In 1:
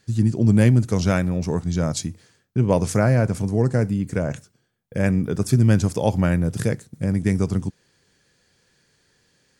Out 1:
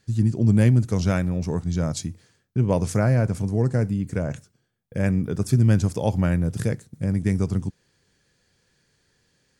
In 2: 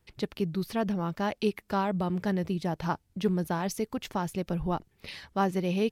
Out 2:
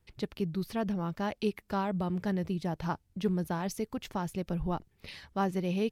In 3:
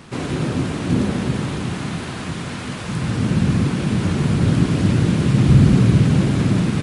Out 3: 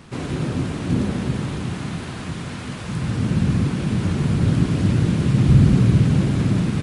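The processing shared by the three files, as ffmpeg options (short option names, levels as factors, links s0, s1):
-af "lowshelf=f=130:g=5.5,volume=0.631"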